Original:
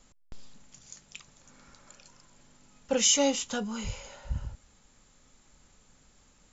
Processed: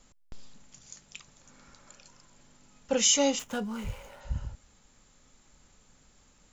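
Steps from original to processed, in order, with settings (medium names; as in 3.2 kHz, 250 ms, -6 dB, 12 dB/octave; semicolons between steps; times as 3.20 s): 3.39–4.21 s: median filter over 9 samples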